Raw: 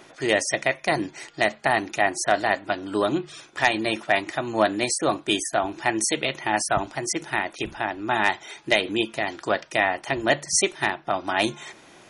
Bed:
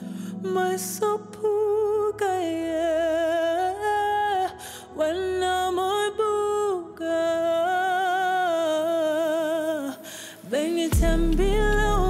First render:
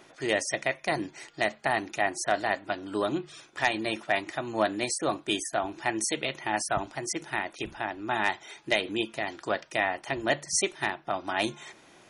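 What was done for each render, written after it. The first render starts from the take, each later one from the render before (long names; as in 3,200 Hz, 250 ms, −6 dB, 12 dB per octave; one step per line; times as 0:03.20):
level −5.5 dB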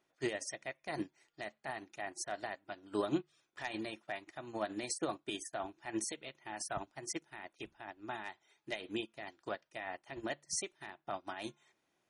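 brickwall limiter −21.5 dBFS, peak gain reduction 10 dB
expander for the loud parts 2.5 to 1, over −44 dBFS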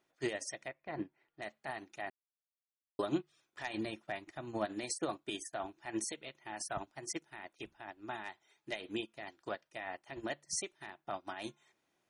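0:00.68–0:01.42: high-frequency loss of the air 430 metres
0:02.10–0:02.99: silence
0:03.77–0:04.66: low-shelf EQ 280 Hz +7.5 dB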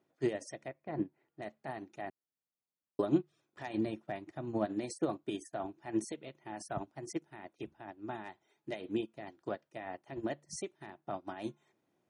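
high-pass filter 89 Hz
tilt shelving filter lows +7.5 dB, about 820 Hz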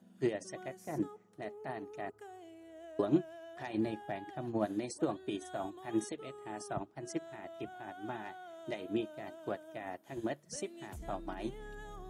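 mix in bed −26.5 dB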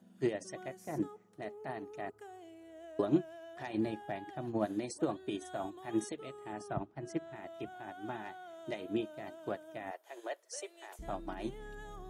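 0:06.53–0:07.36: bass and treble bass +4 dB, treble −8 dB
0:09.91–0:10.99: Butterworth high-pass 430 Hz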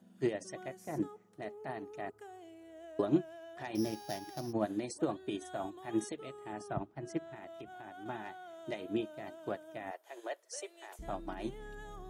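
0:03.75–0:04.53: samples sorted by size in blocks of 8 samples
0:07.34–0:08.06: downward compressor, threshold −43 dBFS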